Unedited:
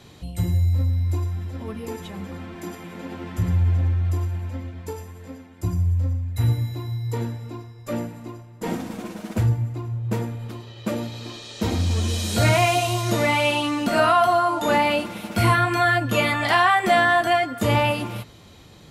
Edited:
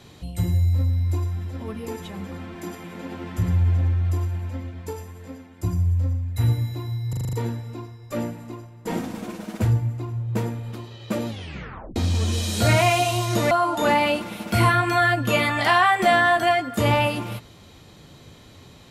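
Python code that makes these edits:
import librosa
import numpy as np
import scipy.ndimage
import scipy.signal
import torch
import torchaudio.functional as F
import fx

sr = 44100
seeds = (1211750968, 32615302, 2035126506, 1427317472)

y = fx.edit(x, sr, fx.stutter(start_s=7.09, slice_s=0.04, count=7),
    fx.tape_stop(start_s=11.04, length_s=0.68),
    fx.cut(start_s=13.27, length_s=1.08), tone=tone)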